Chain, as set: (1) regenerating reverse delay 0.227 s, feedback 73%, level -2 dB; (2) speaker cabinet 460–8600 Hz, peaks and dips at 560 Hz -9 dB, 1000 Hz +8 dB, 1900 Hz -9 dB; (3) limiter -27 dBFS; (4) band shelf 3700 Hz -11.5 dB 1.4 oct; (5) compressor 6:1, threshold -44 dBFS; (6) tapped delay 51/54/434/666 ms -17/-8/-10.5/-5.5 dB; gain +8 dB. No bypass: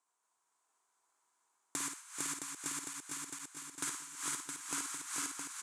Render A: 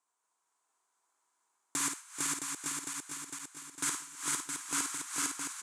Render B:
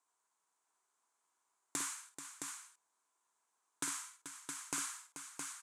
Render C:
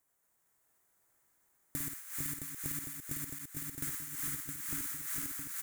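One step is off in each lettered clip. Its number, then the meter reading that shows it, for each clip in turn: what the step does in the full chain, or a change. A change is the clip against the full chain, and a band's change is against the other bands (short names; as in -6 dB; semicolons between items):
5, mean gain reduction 2.0 dB; 1, crest factor change +4.0 dB; 2, 125 Hz band +15.5 dB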